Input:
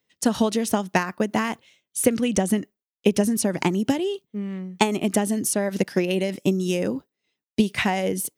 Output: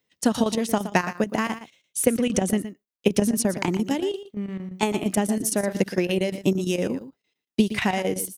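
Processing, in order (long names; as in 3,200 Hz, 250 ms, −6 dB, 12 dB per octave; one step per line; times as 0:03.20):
single-tap delay 119 ms −12.5 dB
square-wave tremolo 8.7 Hz, depth 65%, duty 80%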